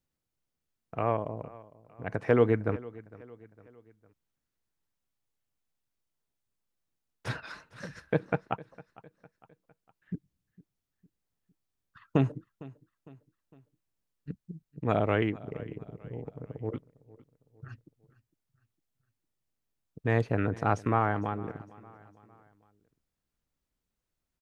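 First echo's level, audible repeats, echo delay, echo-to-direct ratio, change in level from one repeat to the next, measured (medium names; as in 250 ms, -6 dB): -20.5 dB, 3, 456 ms, -19.5 dB, -6.5 dB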